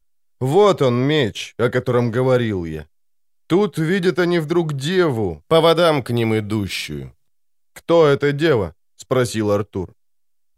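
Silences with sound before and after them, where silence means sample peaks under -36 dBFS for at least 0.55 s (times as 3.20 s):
2.83–3.50 s
7.08–7.76 s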